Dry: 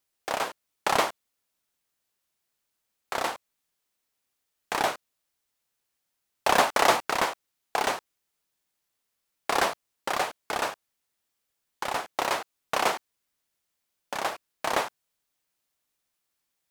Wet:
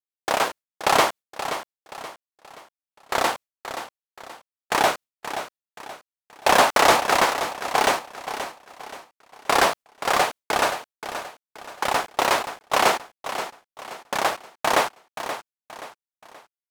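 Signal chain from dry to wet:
leveller curve on the samples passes 2
noise gate with hold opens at −21 dBFS
repeating echo 527 ms, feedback 38%, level −10.5 dB

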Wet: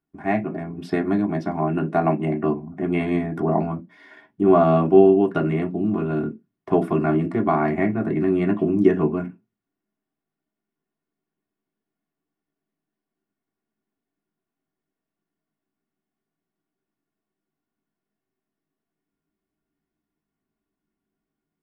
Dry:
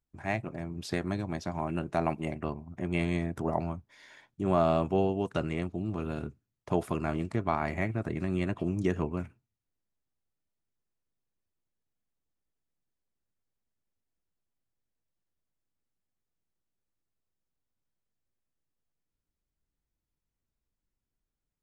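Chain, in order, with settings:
convolution reverb RT60 0.15 s, pre-delay 3 ms, DRR −0.5 dB
level −5 dB

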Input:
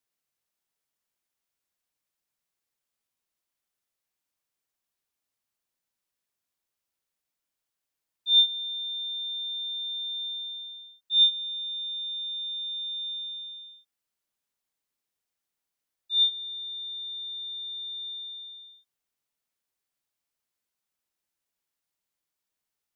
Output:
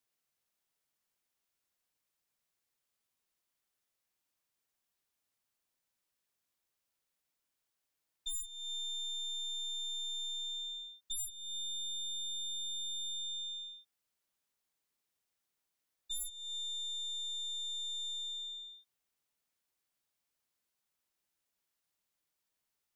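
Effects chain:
stylus tracing distortion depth 0.26 ms
downward compressor 16 to 1, threshold −38 dBFS, peak gain reduction 22.5 dB

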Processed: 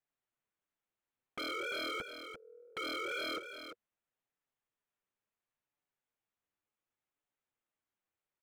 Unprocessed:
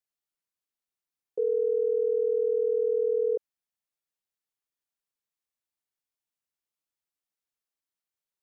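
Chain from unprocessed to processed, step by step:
adaptive Wiener filter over 9 samples
0:02.00–0:02.77: noise gate −20 dBFS, range −41 dB
in parallel at 0 dB: downward compressor 5 to 1, threshold −35 dBFS, peak gain reduction 11 dB
on the sum: flanger 0.69 Hz, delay 6.7 ms, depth 3.8 ms, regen −15%
wave folding −35.5 dBFS
on a send: single-tap delay 344 ms −9 dB
on the sum: level +1.5 dB

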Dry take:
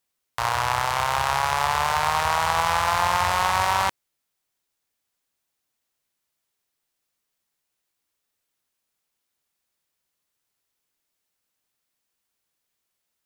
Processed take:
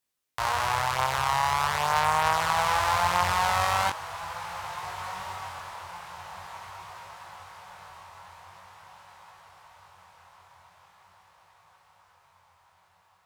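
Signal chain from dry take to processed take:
feedback delay with all-pass diffusion 1,612 ms, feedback 51%, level −12.5 dB
chorus effect 0.43 Hz, delay 19 ms, depth 4.1 ms

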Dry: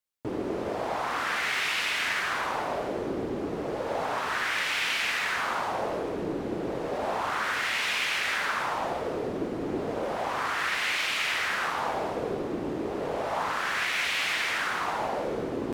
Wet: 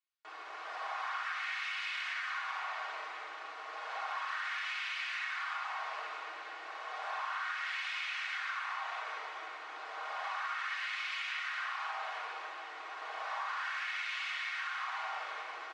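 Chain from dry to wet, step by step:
high-pass filter 1,000 Hz 24 dB per octave
comb filter 6.4 ms, depth 43%
on a send: feedback delay with all-pass diffusion 472 ms, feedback 46%, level −14.5 dB
on the sum: rectangular room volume 2,900 cubic metres, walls furnished, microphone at 3.4 metres
downward compressor, threshold −31 dBFS, peak gain reduction 10 dB
high-frequency loss of the air 120 metres
level −3 dB

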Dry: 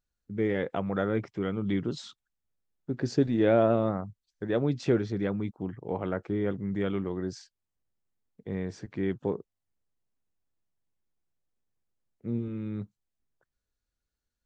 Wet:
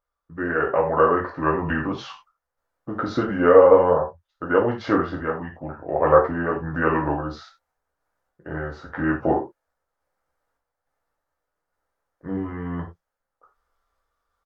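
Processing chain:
flat-topped bell 1,100 Hz +15.5 dB 2.4 octaves
speech leveller within 3 dB 2 s
sample-and-hold tremolo
pitch shifter −3.5 semitones
reverb whose tail is shaped and stops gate 120 ms falling, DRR −2 dB
level −1 dB

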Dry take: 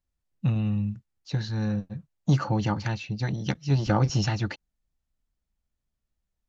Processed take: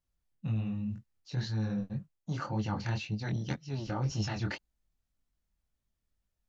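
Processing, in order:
reversed playback
downward compressor 6 to 1, threshold −30 dBFS, peak gain reduction 13.5 dB
reversed playback
chorus effect 1.9 Hz, delay 18.5 ms, depth 7.4 ms
level +2.5 dB

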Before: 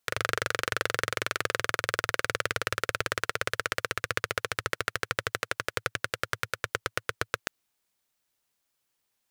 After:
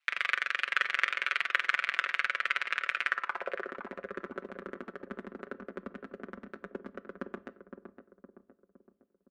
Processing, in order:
high-pass filter 95 Hz 12 dB per octave
parametric band 1,300 Hz +6.5 dB 2.3 octaves
comb filter 6.4 ms, depth 59%
in parallel at +2.5 dB: output level in coarse steps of 11 dB
on the sum: ring modulation 76 Hz
soft clipping −4 dBFS, distortion −15 dB
band-pass filter sweep 2,400 Hz → 250 Hz, 0:03.03–0:03.78
feedback echo with a low-pass in the loop 513 ms, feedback 51%, low-pass 1,100 Hz, level −7 dB
on a send at −16 dB: convolution reverb RT60 0.50 s, pre-delay 6 ms
on the sum: MP3 80 kbit/s 32,000 Hz

